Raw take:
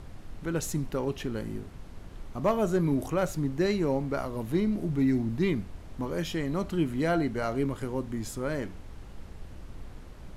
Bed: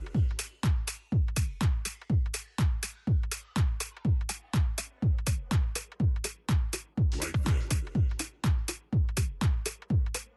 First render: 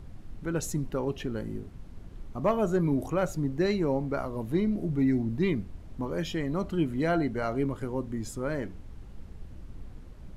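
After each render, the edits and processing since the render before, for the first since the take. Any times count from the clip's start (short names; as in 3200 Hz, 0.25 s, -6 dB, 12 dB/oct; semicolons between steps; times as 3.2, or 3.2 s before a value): denoiser 7 dB, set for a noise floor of -45 dBFS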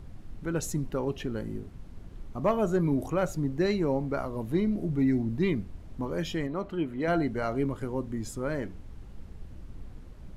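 6.47–7.08 tone controls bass -8 dB, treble -11 dB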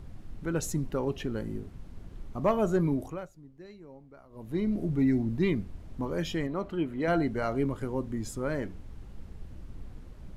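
2.83–4.75 dip -22 dB, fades 0.46 s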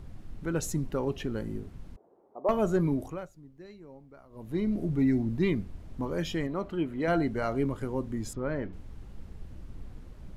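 1.96–2.49 Chebyshev band-pass 410–850 Hz; 8.33–8.73 air absorption 240 m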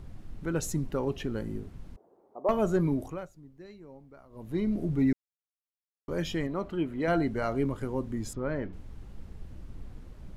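5.13–6.08 mute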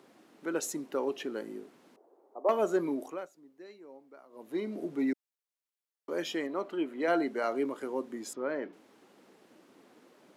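HPF 290 Hz 24 dB/oct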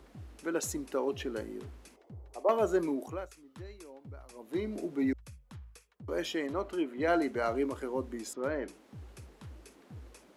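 add bed -21.5 dB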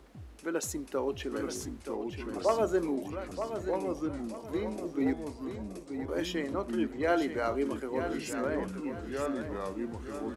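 echoes that change speed 0.773 s, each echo -3 st, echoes 2, each echo -6 dB; feedback echo 0.927 s, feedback 32%, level -8.5 dB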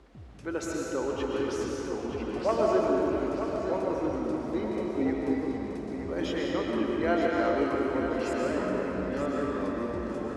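air absorption 65 m; digital reverb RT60 3.1 s, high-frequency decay 0.75×, pre-delay 85 ms, DRR -2.5 dB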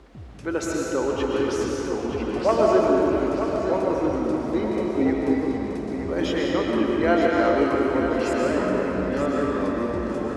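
gain +6.5 dB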